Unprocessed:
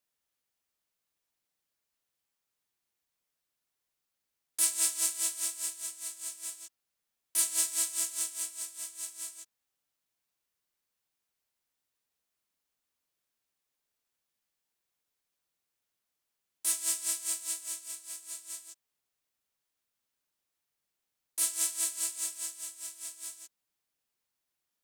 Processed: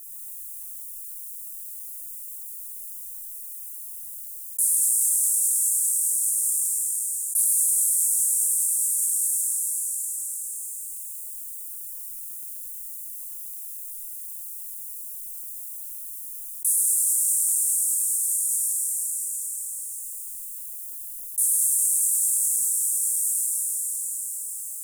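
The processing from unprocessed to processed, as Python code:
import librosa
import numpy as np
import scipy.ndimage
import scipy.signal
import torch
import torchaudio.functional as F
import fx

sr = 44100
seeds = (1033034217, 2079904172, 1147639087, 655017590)

p1 = scipy.signal.sosfilt(scipy.signal.cheby2(4, 70, [120.0, 2300.0], 'bandstop', fs=sr, output='sos'), x)
p2 = fx.rider(p1, sr, range_db=3, speed_s=0.5)
p3 = p1 + (p2 * librosa.db_to_amplitude(1.0))
p4 = 10.0 ** (-10.5 / 20.0) * np.tanh(p3 / 10.0 ** (-10.5 / 20.0))
p5 = p4 + 10.0 ** (-3.5 / 20.0) * np.pad(p4, (int(104 * sr / 1000.0), 0))[:len(p4)]
p6 = fx.rev_plate(p5, sr, seeds[0], rt60_s=2.4, hf_ratio=1.0, predelay_ms=0, drr_db=-0.5)
y = fx.env_flatten(p6, sr, amount_pct=70)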